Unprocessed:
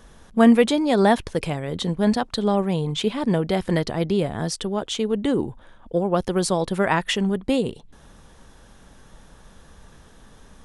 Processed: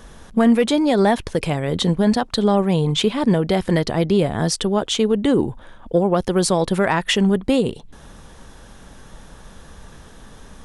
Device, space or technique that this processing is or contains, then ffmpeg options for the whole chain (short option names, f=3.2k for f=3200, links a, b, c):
soft clipper into limiter: -af "asoftclip=type=tanh:threshold=-6dB,alimiter=limit=-14dB:level=0:latency=1:release=299,volume=6.5dB"